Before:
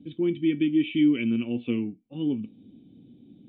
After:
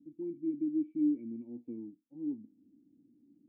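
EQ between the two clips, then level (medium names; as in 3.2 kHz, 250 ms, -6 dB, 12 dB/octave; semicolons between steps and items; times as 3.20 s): cascade formant filter u; peaking EQ 580 Hz +4 dB 0.77 oct; treble shelf 3.3 kHz +11 dB; -9.0 dB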